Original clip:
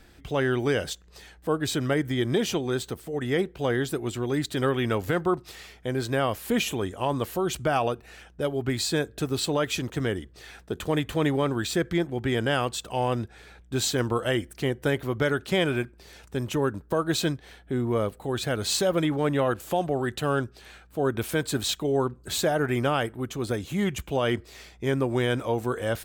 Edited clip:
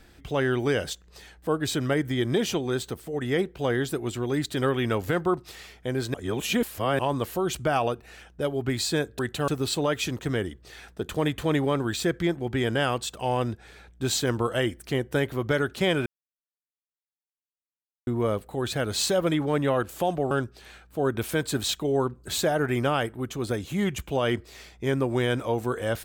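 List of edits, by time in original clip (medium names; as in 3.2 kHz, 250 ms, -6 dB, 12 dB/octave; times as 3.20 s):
6.14–6.99 s: reverse
15.77–17.78 s: mute
20.02–20.31 s: move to 9.19 s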